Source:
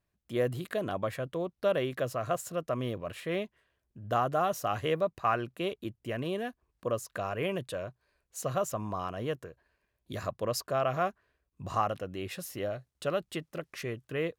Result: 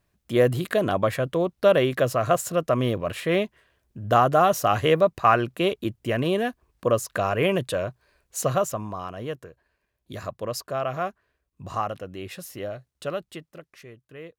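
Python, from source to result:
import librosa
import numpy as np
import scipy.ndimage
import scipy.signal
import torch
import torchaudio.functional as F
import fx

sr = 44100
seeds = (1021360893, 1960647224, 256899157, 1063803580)

y = fx.gain(x, sr, db=fx.line((8.43, 10.0), (8.94, 1.5), (13.1, 1.5), (13.87, -9.0)))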